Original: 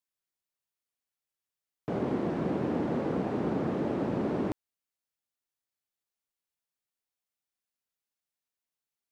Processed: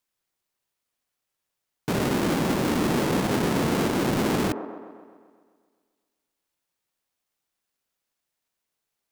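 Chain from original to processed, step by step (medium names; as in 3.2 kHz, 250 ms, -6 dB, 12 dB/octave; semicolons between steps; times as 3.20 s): square wave that keeps the level; peak limiter -27 dBFS, peak gain reduction 8 dB; on a send: feedback echo behind a band-pass 130 ms, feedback 60%, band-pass 600 Hz, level -7 dB; on the sum: trim +6.5 dB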